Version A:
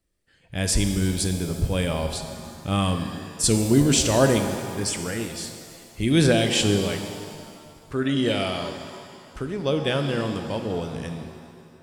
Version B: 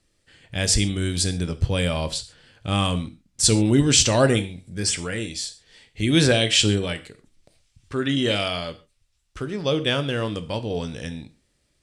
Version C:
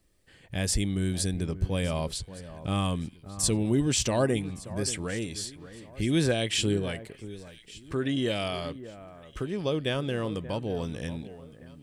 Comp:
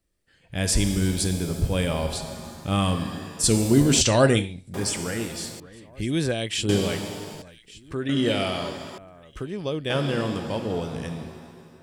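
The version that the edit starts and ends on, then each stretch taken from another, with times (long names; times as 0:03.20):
A
0:04.01–0:04.74: punch in from B
0:05.60–0:06.69: punch in from C
0:07.42–0:08.09: punch in from C
0:08.98–0:09.90: punch in from C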